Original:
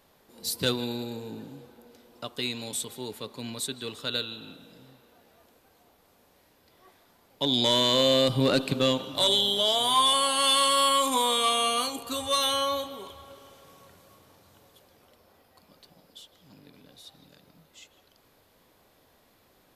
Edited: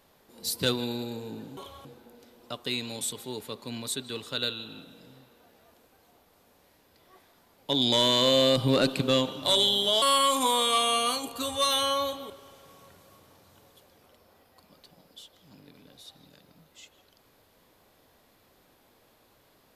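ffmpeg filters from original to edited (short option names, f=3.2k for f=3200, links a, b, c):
-filter_complex "[0:a]asplit=5[a][b][c][d][e];[a]atrim=end=1.572[f];[b]atrim=start=13.008:end=13.292[g];[c]atrim=start=1.568:end=9.742[h];[d]atrim=start=10.728:end=13.012[i];[e]atrim=start=13.288[j];[f][g]acrossfade=d=0.004:c1=hsin:c2=hsin[k];[k][h]acrossfade=d=0.004:c1=hsin:c2=hsin[l];[l][i]acrossfade=d=0.004:c1=hsin:c2=hsin[m];[m][j]acrossfade=d=0.004:c1=hsin:c2=hsin"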